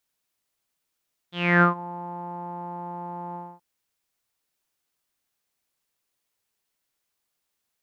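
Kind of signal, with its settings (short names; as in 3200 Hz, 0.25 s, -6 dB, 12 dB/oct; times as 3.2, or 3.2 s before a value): synth note saw F3 12 dB/oct, low-pass 900 Hz, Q 10, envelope 2 oct, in 0.46 s, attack 0.301 s, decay 0.12 s, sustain -21.5 dB, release 0.25 s, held 2.03 s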